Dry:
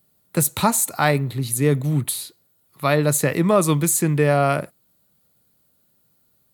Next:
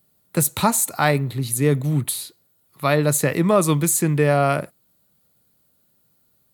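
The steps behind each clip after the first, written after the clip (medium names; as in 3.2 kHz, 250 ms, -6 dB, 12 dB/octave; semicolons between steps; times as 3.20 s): no audible change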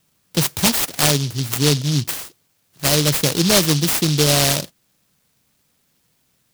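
delay time shaken by noise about 4.3 kHz, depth 0.3 ms; trim +1.5 dB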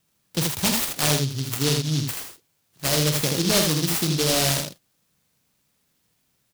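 early reflections 45 ms -9 dB, 80 ms -4.5 dB; trim -6.5 dB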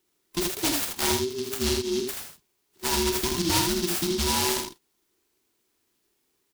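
every band turned upside down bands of 500 Hz; trim -3.5 dB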